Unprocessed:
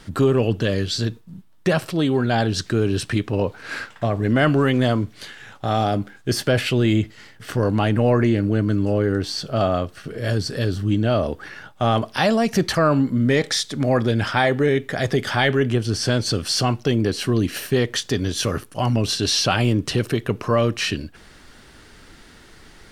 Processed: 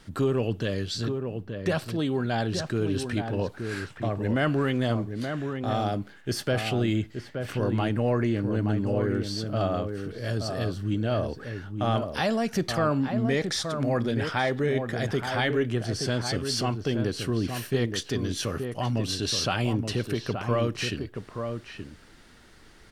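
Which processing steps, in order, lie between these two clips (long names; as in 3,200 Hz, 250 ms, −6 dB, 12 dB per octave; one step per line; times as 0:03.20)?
0:03.46–0:03.97: parametric band 9,800 Hz +6.5 dB 1.1 octaves
slap from a distant wall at 150 metres, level −6 dB
level −7.5 dB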